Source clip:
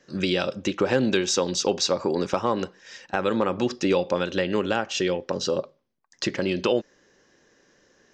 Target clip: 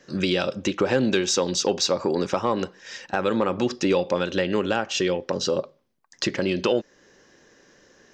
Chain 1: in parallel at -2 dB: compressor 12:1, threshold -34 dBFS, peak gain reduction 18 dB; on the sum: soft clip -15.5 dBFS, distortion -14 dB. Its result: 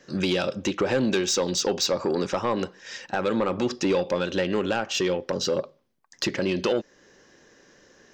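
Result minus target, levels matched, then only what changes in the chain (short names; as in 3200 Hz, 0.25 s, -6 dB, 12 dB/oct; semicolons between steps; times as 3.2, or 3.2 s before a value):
soft clip: distortion +13 dB
change: soft clip -6.5 dBFS, distortion -27 dB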